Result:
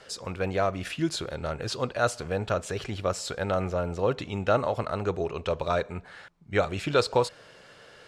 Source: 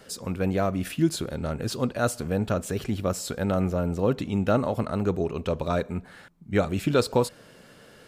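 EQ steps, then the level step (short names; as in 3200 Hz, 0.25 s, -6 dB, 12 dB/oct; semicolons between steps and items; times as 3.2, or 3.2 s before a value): LPF 6400 Hz 12 dB/oct; low shelf 110 Hz -7 dB; bell 230 Hz -11.5 dB 1.2 oct; +2.5 dB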